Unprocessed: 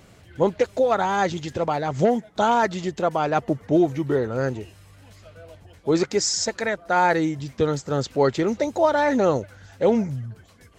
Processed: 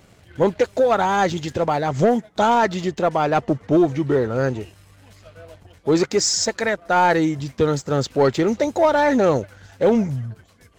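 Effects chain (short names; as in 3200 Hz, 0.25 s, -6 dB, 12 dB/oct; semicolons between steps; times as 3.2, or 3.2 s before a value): 2.55–4.57 LPF 7500 Hz 12 dB/oct; sample leveller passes 1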